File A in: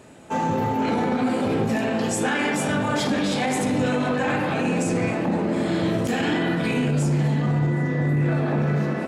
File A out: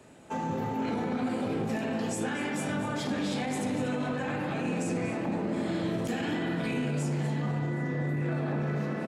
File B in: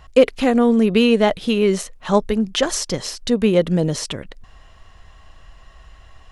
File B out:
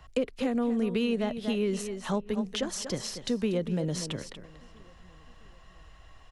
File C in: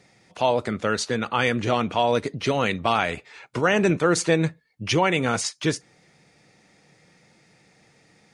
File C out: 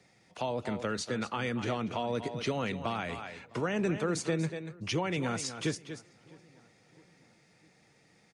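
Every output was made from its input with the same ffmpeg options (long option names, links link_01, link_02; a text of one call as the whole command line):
ffmpeg -i in.wav -filter_complex "[0:a]asplit=2[link_01][link_02];[link_02]aecho=0:1:237:0.224[link_03];[link_01][link_03]amix=inputs=2:normalize=0,acrossover=split=110|320[link_04][link_05][link_06];[link_04]acompressor=threshold=-42dB:ratio=4[link_07];[link_05]acompressor=threshold=-23dB:ratio=4[link_08];[link_06]acompressor=threshold=-26dB:ratio=4[link_09];[link_07][link_08][link_09]amix=inputs=3:normalize=0,asplit=2[link_10][link_11];[link_11]adelay=658,lowpass=frequency=2000:poles=1,volume=-23.5dB,asplit=2[link_12][link_13];[link_13]adelay=658,lowpass=frequency=2000:poles=1,volume=0.53,asplit=2[link_14][link_15];[link_15]adelay=658,lowpass=frequency=2000:poles=1,volume=0.53[link_16];[link_12][link_14][link_16]amix=inputs=3:normalize=0[link_17];[link_10][link_17]amix=inputs=2:normalize=0,volume=-6.5dB" out.wav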